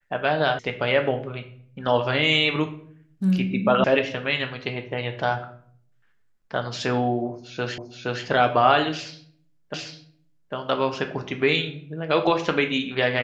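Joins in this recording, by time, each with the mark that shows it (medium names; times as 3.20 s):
0.59 s: sound stops dead
3.84 s: sound stops dead
7.78 s: repeat of the last 0.47 s
9.74 s: repeat of the last 0.8 s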